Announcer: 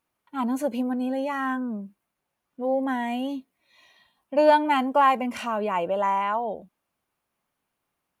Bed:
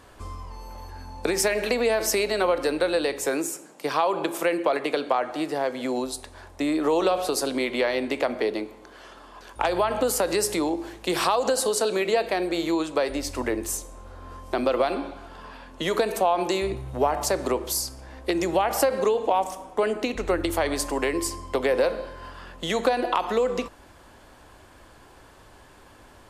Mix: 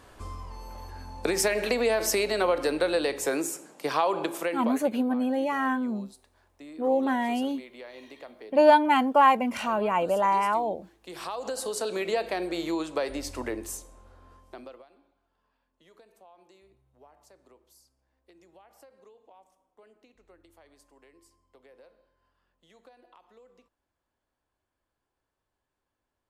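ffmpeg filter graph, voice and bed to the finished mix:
-filter_complex "[0:a]adelay=4200,volume=1.06[s0];[1:a]volume=4.73,afade=t=out:st=4.14:d=0.79:silence=0.11885,afade=t=in:st=11:d=1.09:silence=0.16788,afade=t=out:st=13.29:d=1.56:silence=0.0375837[s1];[s0][s1]amix=inputs=2:normalize=0"

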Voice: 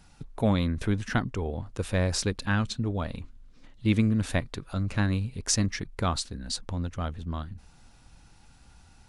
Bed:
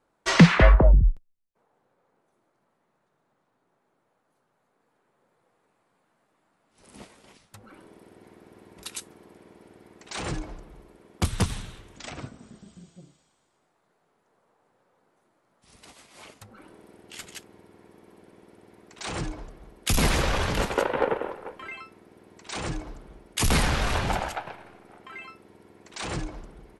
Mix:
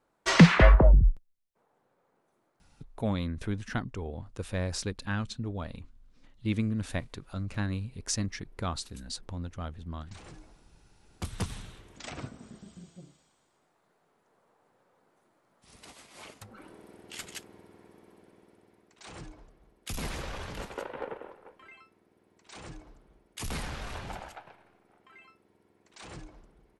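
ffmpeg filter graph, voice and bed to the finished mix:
-filter_complex "[0:a]adelay=2600,volume=0.501[s0];[1:a]volume=5.96,afade=t=out:st=2.46:d=0.66:silence=0.158489,afade=t=in:st=10.98:d=1.45:silence=0.133352,afade=t=out:st=17.46:d=1.52:silence=0.223872[s1];[s0][s1]amix=inputs=2:normalize=0"

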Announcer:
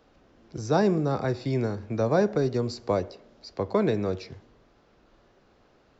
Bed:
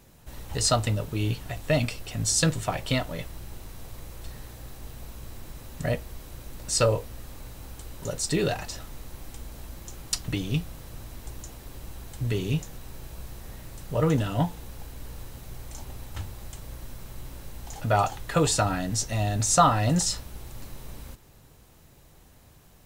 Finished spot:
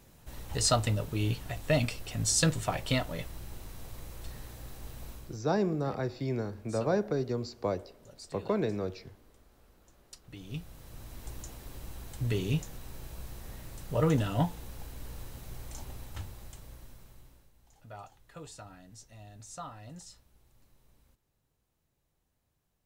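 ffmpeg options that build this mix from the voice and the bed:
-filter_complex "[0:a]adelay=4750,volume=0.501[s0];[1:a]volume=6.68,afade=t=out:st=5.11:d=0.29:silence=0.105925,afade=t=in:st=10.27:d=1.04:silence=0.105925,afade=t=out:st=15.77:d=1.74:silence=0.0891251[s1];[s0][s1]amix=inputs=2:normalize=0"

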